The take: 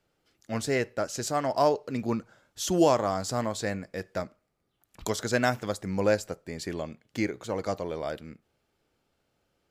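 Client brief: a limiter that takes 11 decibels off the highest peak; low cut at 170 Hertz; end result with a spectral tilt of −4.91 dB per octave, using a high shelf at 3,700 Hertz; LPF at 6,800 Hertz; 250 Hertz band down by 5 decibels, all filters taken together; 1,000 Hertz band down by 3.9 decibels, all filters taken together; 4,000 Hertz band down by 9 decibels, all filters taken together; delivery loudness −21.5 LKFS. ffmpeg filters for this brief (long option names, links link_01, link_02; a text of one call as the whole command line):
ffmpeg -i in.wav -af "highpass=170,lowpass=6800,equalizer=frequency=250:width_type=o:gain=-5.5,equalizer=frequency=1000:width_type=o:gain=-4.5,highshelf=frequency=3700:gain=-4.5,equalizer=frequency=4000:width_type=o:gain=-7.5,volume=16dB,alimiter=limit=-8dB:level=0:latency=1" out.wav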